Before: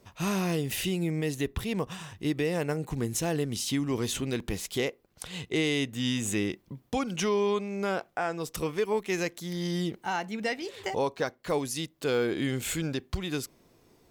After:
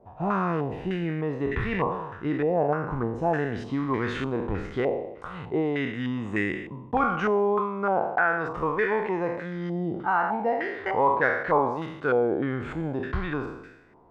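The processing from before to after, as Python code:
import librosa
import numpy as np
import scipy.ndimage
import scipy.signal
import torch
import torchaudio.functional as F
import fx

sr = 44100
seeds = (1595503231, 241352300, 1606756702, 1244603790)

y = fx.spec_trails(x, sr, decay_s=0.89)
y = fx.filter_held_lowpass(y, sr, hz=3.3, low_hz=750.0, high_hz=1800.0)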